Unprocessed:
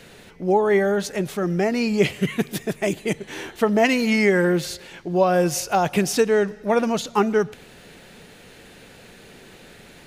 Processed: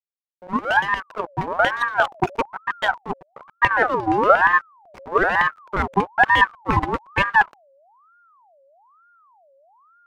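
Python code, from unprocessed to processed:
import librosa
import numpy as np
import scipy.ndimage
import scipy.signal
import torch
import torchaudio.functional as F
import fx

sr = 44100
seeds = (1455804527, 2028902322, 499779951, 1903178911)

p1 = fx.fade_in_head(x, sr, length_s=1.1)
p2 = fx.spec_box(p1, sr, start_s=3.05, length_s=1.75, low_hz=1400.0, high_hz=3400.0, gain_db=-19)
p3 = fx.level_steps(p2, sr, step_db=21)
p4 = p2 + F.gain(torch.from_numpy(p3), 0.0).numpy()
p5 = fx.filter_lfo_lowpass(p4, sr, shape='square', hz=8.5, low_hz=390.0, high_hz=1800.0, q=2.8)
p6 = fx.rotary_switch(p5, sr, hz=7.0, then_hz=0.75, switch_at_s=6.74)
p7 = fx.backlash(p6, sr, play_db=-20.0)
p8 = fx.ring_lfo(p7, sr, carrier_hz=980.0, swing_pct=45, hz=1.1)
y = F.gain(torch.from_numpy(p8), -1.0).numpy()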